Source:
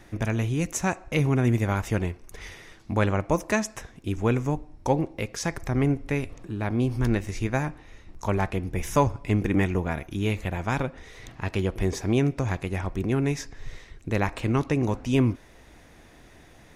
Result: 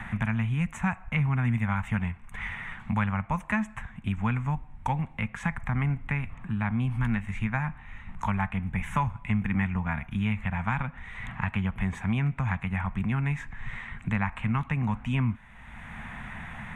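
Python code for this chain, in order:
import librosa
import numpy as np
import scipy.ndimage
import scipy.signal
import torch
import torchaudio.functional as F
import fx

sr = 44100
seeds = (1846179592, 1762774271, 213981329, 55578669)

y = fx.curve_eq(x, sr, hz=(120.0, 220.0, 320.0, 560.0, 870.0, 2200.0, 3400.0, 5000.0, 8200.0, 12000.0), db=(0, 3, -22, -15, 2, 3, -6, -28, -9, -19))
y = fx.band_squash(y, sr, depth_pct=70)
y = y * 10.0 ** (-2.0 / 20.0)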